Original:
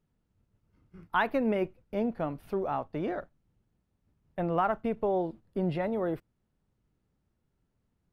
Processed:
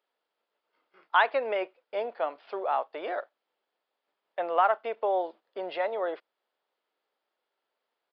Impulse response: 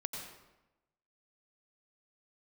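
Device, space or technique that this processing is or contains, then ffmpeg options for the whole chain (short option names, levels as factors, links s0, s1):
musical greeting card: -af "aresample=11025,aresample=44100,highpass=f=510:w=0.5412,highpass=f=510:w=1.3066,equalizer=f=3300:t=o:w=0.21:g=4.5,volume=1.78"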